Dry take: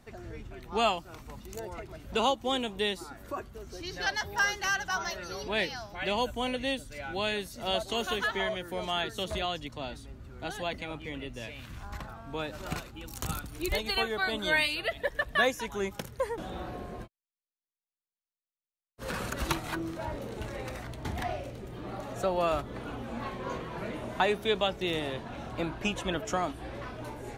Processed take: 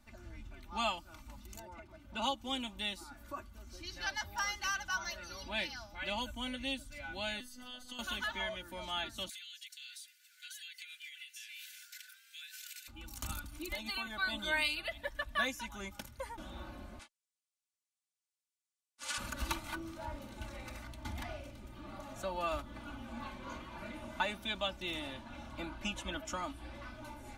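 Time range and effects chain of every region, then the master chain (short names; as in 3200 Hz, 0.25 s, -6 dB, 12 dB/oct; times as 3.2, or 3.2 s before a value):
1.62–2.22 HPF 100 Hz 6 dB/oct + high shelf 3000 Hz -10 dB
7.4–7.99 robotiser 249 Hz + compressor 4:1, threshold -35 dBFS
9.29–12.88 steep high-pass 1500 Hz 96 dB/oct + tilt +4 dB/oct + compressor 12:1, threshold -39 dBFS
13.59–14.07 resonant low shelf 190 Hz -8 dB, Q 3 + compressor 3:1, threshold -29 dBFS
16.99–19.18 minimum comb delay 3.5 ms + weighting filter ITU-R 468
whole clip: bell 440 Hz -13.5 dB 0.86 oct; notch 1800 Hz, Q 14; comb 3.4 ms, depth 71%; gain -6.5 dB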